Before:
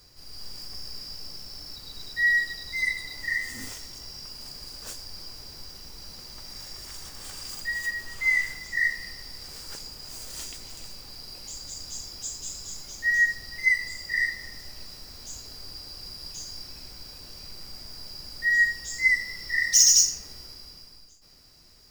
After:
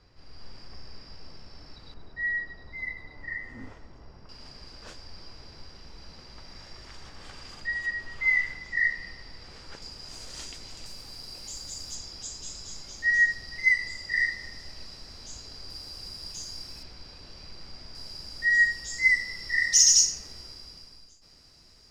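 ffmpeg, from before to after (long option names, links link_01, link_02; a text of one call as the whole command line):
ffmpeg -i in.wav -af "asetnsamples=nb_out_samples=441:pad=0,asendcmd='1.94 lowpass f 1300;4.29 lowpass f 3300;9.82 lowpass f 6000;10.86 lowpass f 11000;11.95 lowpass f 6000;15.7 lowpass f 10000;16.83 lowpass f 4200;17.95 lowpass f 8100',lowpass=2600" out.wav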